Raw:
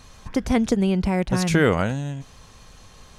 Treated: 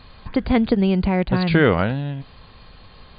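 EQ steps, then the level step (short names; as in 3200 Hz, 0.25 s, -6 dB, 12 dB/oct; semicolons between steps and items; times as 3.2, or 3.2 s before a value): brick-wall FIR low-pass 4800 Hz; +2.5 dB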